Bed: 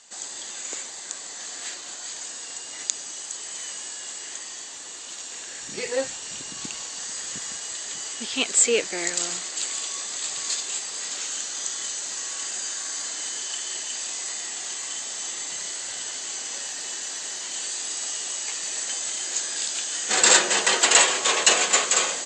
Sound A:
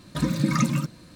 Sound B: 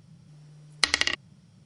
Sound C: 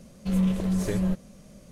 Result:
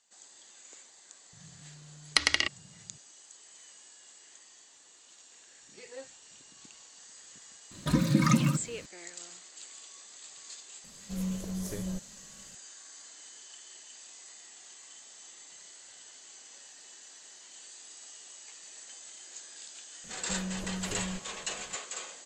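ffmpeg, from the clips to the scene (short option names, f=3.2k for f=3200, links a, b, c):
-filter_complex "[3:a]asplit=2[a][b];[0:a]volume=-19dB[c];[a]aexciter=amount=2.5:drive=4.9:freq=4.9k[d];[b]acompressor=threshold=-27dB:ratio=6:attack=3.2:release=140:knee=1:detection=peak[e];[2:a]atrim=end=1.65,asetpts=PTS-STARTPTS,volume=-2dB,afade=t=in:d=0.004:c=hsin,afade=t=out:st=1.646:d=0.004:c=hsin,adelay=1330[f];[1:a]atrim=end=1.15,asetpts=PTS-STARTPTS,volume=-1.5dB,afade=t=in:d=0.004:c=hsin,afade=t=out:st=1.146:d=0.004:c=hsin,adelay=7710[g];[d]atrim=end=1.71,asetpts=PTS-STARTPTS,volume=-10.5dB,afade=t=in:d=0.004:c=hsin,afade=t=out:st=1.706:d=0.004:c=hsin,adelay=10840[h];[e]atrim=end=1.71,asetpts=PTS-STARTPTS,volume=-7dB,afade=t=in:d=0.004:c=hsin,afade=t=out:st=1.706:d=0.004:c=hsin,adelay=883764S[i];[c][f][g][h][i]amix=inputs=5:normalize=0"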